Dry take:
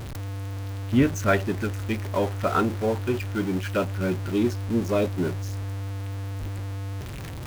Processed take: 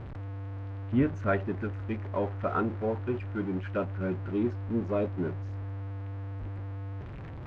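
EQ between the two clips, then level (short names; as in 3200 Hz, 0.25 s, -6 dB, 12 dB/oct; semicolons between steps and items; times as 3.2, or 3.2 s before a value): LPF 1800 Hz 12 dB/oct; -5.5 dB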